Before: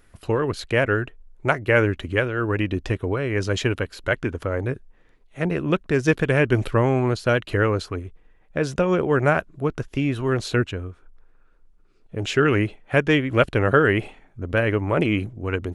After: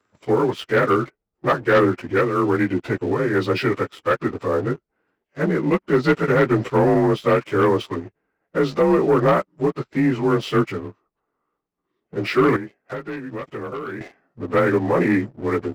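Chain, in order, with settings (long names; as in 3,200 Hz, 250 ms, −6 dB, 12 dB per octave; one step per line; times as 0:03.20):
partials spread apart or drawn together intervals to 90%
high-pass filter 190 Hz 12 dB per octave
high-shelf EQ 3,400 Hz −7 dB
notch filter 6,700 Hz, Q 8.3
leveller curve on the samples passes 2
0:12.56–0:14.01: downward compressor 10 to 1, threshold −28 dBFS, peak gain reduction 16 dB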